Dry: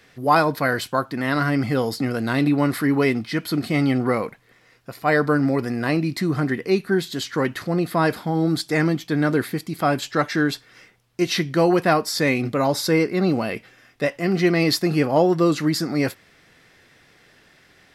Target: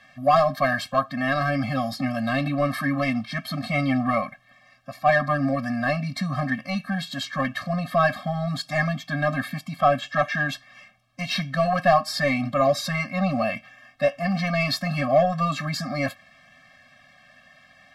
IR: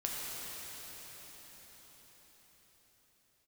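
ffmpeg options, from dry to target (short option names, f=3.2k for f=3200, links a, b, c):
-filter_complex "[0:a]asettb=1/sr,asplit=3[a][b][c];[a]atrim=end=9.694[d];[b]atrim=start=9.69:end=10.49,asetpts=PTS-STARTPTS,afade=t=in:d=0.004:c=qsin,afade=t=out:st=0.796:d=0.004:c=qsin,acrossover=split=4100[e][f];[f]acompressor=threshold=-44dB:ratio=4:attack=1:release=60[g];[e][g]amix=inputs=2:normalize=0[h];[c]atrim=start=10.486[i];[d][h]acrossfade=d=0.004:c1=hsin:c2=qsin[j];[j][i]acrossfade=d=0.004:c1=qsin:c2=hsin,asplit=2[k][l];[l]highpass=f=720:p=1,volume=13dB,asoftclip=type=tanh:threshold=-4dB[m];[k][m]amix=inputs=2:normalize=0,lowpass=f=2k:p=1,volume=-6dB,afftfilt=real='re*eq(mod(floor(b*sr/1024/260),2),0)':imag='im*eq(mod(floor(b*sr/1024/260),2),0)':win_size=1024:overlap=0.75"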